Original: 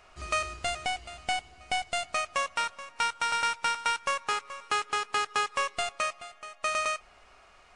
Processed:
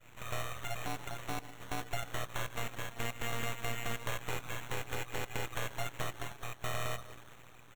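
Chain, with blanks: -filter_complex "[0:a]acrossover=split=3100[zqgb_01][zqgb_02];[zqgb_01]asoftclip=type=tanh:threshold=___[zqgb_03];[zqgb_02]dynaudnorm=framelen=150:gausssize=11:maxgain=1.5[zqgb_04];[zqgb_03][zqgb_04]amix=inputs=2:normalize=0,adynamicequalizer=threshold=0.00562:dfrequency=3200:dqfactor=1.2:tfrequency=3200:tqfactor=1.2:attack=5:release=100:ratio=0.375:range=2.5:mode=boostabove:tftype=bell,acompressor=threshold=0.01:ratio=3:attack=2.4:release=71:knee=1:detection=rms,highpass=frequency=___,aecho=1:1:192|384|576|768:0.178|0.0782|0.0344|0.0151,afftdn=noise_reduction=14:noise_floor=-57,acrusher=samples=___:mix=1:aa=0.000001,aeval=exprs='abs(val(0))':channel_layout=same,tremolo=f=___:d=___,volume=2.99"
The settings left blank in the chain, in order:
0.0211, 810, 9, 120, 0.667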